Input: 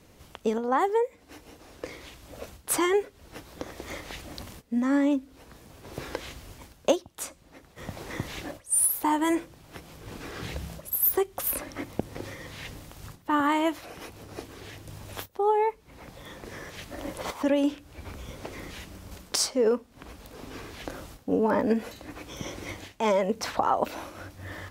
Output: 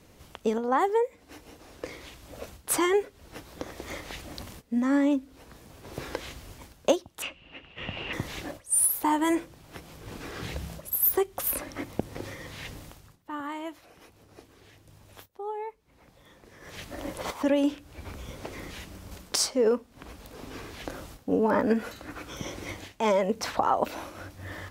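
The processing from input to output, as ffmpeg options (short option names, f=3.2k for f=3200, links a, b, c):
-filter_complex "[0:a]asettb=1/sr,asplit=3[a][b][c];[a]atrim=end=7.224[d];[b]atrim=start=7.22:end=8.13,asetpts=PTS-STARTPTS,afade=t=in:d=0.004:c=qsin,afade=t=out:st=0.906:d=0.004:c=qsin,lowpass=f=2.8k:t=q:w=15[e];[c]atrim=start=8.126[f];[d][e]acrossfade=d=0.004:c1=hsin:c2=qsin[g];[g][f]acrossfade=d=0.004:c1=qsin:c2=hsin,asettb=1/sr,asplit=3[h][i][j];[h]atrim=end=21.544[k];[i]atrim=start=21.54:end=22.37,asetpts=PTS-STARTPTS,afade=t=in:d=0.004:c=qsin,afade=t=out:st=0.826:d=0.004:c=qsin,equalizer=f=1.4k:t=o:w=0.41:g=9.5[l];[j]atrim=start=22.366[m];[k][l]acrossfade=d=0.004:c1=hsin:c2=qsin[n];[n][m]acrossfade=d=0.004:c1=qsin:c2=hsin,asplit=3[o][p][q];[o]atrim=end=13.03,asetpts=PTS-STARTPTS,afade=t=out:st=12.89:d=0.14:silence=0.266073[r];[p]atrim=start=13.03:end=16.6,asetpts=PTS-STARTPTS,volume=-11.5dB[s];[q]atrim=start=16.6,asetpts=PTS-STARTPTS,afade=t=in:d=0.14:silence=0.266073[t];[r][s][t]concat=n=3:v=0:a=1"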